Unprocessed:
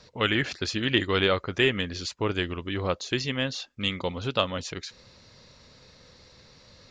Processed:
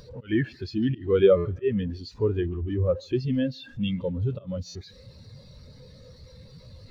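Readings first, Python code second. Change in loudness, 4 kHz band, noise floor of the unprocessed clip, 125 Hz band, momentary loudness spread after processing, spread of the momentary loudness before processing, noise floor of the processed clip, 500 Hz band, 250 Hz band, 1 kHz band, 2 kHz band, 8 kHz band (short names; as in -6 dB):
+1.0 dB, -13.5 dB, -55 dBFS, +4.5 dB, 14 LU, 8 LU, -51 dBFS, +4.5 dB, +3.5 dB, -11.5 dB, -12.5 dB, under -10 dB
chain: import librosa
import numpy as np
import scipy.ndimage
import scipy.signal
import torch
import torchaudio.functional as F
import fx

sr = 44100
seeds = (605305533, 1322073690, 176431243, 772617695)

p1 = x + 0.5 * 10.0 ** (-22.0 / 20.0) * np.sign(x)
p2 = fx.auto_swell(p1, sr, attack_ms=121.0)
p3 = p2 + fx.echo_feedback(p2, sr, ms=142, feedback_pct=46, wet_db=-14.5, dry=0)
p4 = fx.buffer_glitch(p3, sr, at_s=(1.36, 4.66), block=512, repeats=7)
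y = fx.spectral_expand(p4, sr, expansion=2.5)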